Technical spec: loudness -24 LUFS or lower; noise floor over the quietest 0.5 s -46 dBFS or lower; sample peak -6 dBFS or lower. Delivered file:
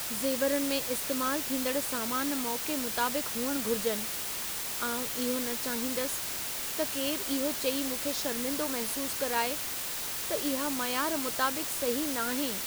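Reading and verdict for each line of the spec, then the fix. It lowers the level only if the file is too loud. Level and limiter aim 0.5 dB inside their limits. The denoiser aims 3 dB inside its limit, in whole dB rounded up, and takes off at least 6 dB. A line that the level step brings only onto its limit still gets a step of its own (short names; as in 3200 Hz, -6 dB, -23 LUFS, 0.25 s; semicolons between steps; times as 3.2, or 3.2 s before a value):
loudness -30.0 LUFS: OK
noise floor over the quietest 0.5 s -35 dBFS: fail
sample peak -14.5 dBFS: OK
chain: denoiser 14 dB, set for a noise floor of -35 dBFS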